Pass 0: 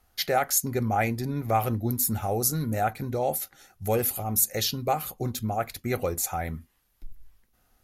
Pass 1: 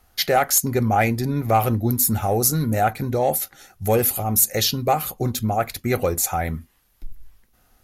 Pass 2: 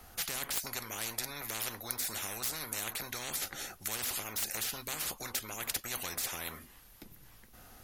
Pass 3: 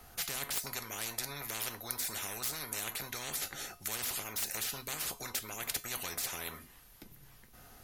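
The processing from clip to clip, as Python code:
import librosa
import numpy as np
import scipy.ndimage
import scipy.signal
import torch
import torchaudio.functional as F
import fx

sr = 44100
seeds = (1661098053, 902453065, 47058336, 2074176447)

y1 = fx.fold_sine(x, sr, drive_db=3, ceiling_db=-8.5)
y2 = fx.spectral_comp(y1, sr, ratio=10.0)
y2 = F.gain(torch.from_numpy(y2), -4.5).numpy()
y3 = fx.comb_fb(y2, sr, f0_hz=140.0, decay_s=0.32, harmonics='odd', damping=0.0, mix_pct=60)
y3 = F.gain(torch.from_numpy(y3), 6.0).numpy()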